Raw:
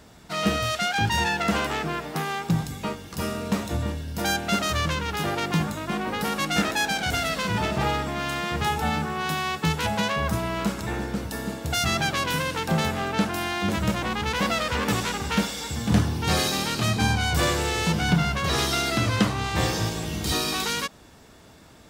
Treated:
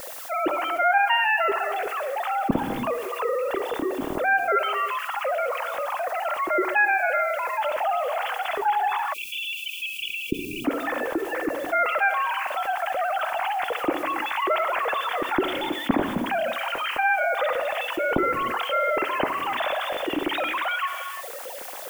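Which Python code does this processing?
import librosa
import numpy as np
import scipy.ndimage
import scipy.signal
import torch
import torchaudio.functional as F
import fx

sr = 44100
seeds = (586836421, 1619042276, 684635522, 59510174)

y = fx.sine_speech(x, sr)
y = fx.rev_gated(y, sr, seeds[0], gate_ms=370, shape='flat', drr_db=12.0)
y = fx.rider(y, sr, range_db=5, speed_s=2.0)
y = fx.tilt_eq(y, sr, slope=-2.5)
y = fx.echo_feedback(y, sr, ms=67, feedback_pct=16, wet_db=-17.5)
y = fx.dmg_noise_colour(y, sr, seeds[1], colour='blue', level_db=-52.0)
y = fx.spec_erase(y, sr, start_s=9.13, length_s=1.52, low_hz=480.0, high_hz=2300.0)
y = fx.quant_float(y, sr, bits=8)
y = fx.peak_eq(y, sr, hz=290.0, db=3.0, octaves=0.41)
y = fx.notch(y, sr, hz=440.0, q=12.0)
y = fx.env_flatten(y, sr, amount_pct=50)
y = F.gain(torch.from_numpy(y), -7.0).numpy()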